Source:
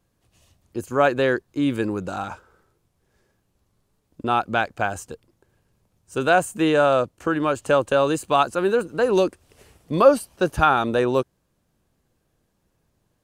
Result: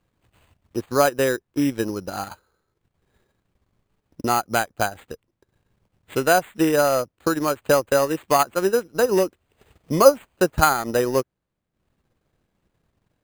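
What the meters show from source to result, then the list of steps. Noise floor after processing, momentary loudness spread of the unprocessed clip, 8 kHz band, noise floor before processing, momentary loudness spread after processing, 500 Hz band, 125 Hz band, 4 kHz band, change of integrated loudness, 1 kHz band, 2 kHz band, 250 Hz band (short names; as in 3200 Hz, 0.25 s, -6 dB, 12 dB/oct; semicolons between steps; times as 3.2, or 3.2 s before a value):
-79 dBFS, 14 LU, +8.5 dB, -71 dBFS, 12 LU, 0.0 dB, -0.5 dB, +1.0 dB, 0.0 dB, -0.5 dB, -1.0 dB, -0.5 dB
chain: transient shaper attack +4 dB, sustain -10 dB; sample-and-hold 8×; dynamic EQ 4000 Hz, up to -6 dB, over -38 dBFS, Q 1.5; gain -1 dB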